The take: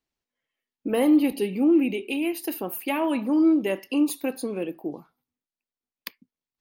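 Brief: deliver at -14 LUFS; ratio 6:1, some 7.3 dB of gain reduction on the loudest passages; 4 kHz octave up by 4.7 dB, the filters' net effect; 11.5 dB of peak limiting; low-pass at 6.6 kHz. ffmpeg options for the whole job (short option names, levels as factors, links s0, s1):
-af "lowpass=6600,equalizer=f=4000:t=o:g=7.5,acompressor=threshold=0.0708:ratio=6,volume=6.68,alimiter=limit=0.562:level=0:latency=1"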